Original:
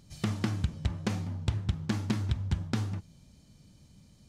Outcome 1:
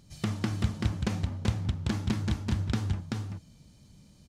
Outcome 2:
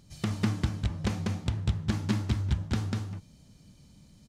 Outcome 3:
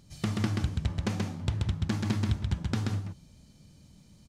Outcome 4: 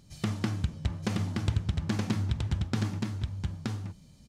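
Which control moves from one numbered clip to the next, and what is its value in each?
delay, time: 384 ms, 195 ms, 131 ms, 923 ms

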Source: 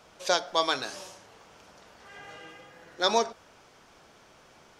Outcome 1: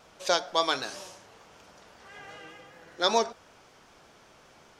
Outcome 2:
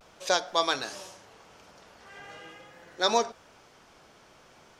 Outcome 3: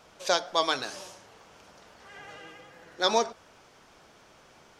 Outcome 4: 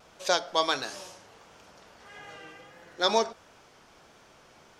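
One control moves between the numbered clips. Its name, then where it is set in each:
vibrato, rate: 5.2 Hz, 0.43 Hz, 11 Hz, 1.5 Hz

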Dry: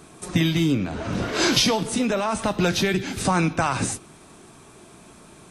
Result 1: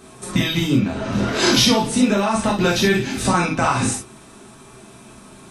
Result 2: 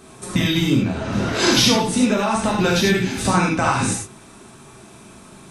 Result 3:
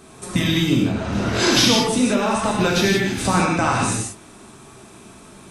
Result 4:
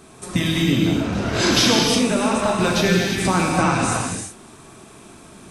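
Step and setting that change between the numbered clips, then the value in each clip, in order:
gated-style reverb, gate: 80 ms, 120 ms, 200 ms, 390 ms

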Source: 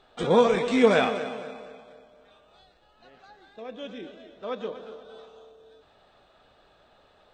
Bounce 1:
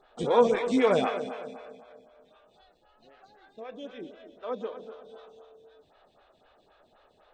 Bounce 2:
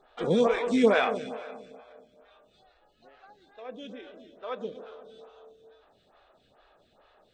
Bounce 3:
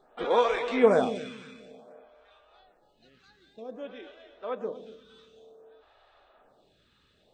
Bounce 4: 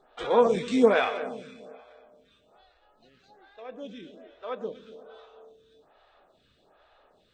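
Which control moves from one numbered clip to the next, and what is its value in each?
lamp-driven phase shifter, rate: 3.9 Hz, 2.3 Hz, 0.54 Hz, 1.2 Hz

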